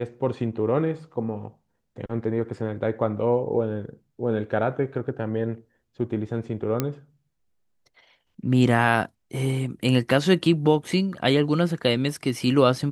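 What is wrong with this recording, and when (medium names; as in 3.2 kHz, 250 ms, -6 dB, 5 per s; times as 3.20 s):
6.80 s: pop -9 dBFS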